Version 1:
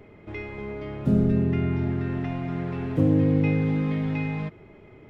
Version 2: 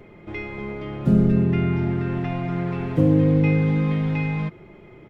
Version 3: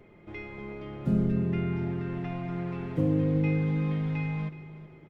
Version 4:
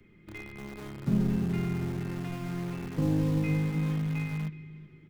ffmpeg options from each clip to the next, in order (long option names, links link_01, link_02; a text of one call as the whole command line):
ffmpeg -i in.wav -af "aecho=1:1:5.7:0.37,volume=3dB" out.wav
ffmpeg -i in.wav -af "aecho=1:1:373|746|1119:0.168|0.0588|0.0206,volume=-8.5dB" out.wav
ffmpeg -i in.wav -filter_complex "[0:a]flanger=delay=3.2:depth=7.9:regen=-78:speed=0.7:shape=triangular,acrossover=split=190|370|1300[link_01][link_02][link_03][link_04];[link_03]acrusher=bits=5:dc=4:mix=0:aa=0.000001[link_05];[link_01][link_02][link_05][link_04]amix=inputs=4:normalize=0,volume=3.5dB" out.wav